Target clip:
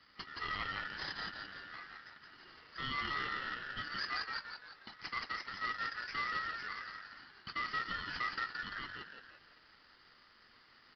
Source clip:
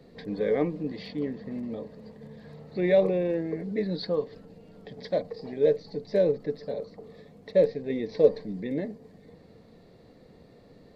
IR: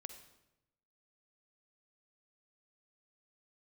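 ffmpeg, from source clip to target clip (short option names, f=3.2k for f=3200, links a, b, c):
-filter_complex "[0:a]aderivative,asetrate=33038,aresample=44100,atempo=1.33484,asplit=7[a][b][c][d][e][f][g];[b]adelay=171,afreqshift=-100,volume=-3.5dB[h];[c]adelay=342,afreqshift=-200,volume=-10.2dB[i];[d]adelay=513,afreqshift=-300,volume=-17dB[j];[e]adelay=684,afreqshift=-400,volume=-23.7dB[k];[f]adelay=855,afreqshift=-500,volume=-30.5dB[l];[g]adelay=1026,afreqshift=-600,volume=-37.2dB[m];[a][h][i][j][k][l][m]amix=inputs=7:normalize=0,alimiter=level_in=16dB:limit=-24dB:level=0:latency=1:release=34,volume=-16dB,aeval=exprs='val(0)*sin(2*PI*1600*n/s)':c=same,aresample=11025,acrusher=bits=2:mode=log:mix=0:aa=0.000001,aresample=44100,volume=12.5dB"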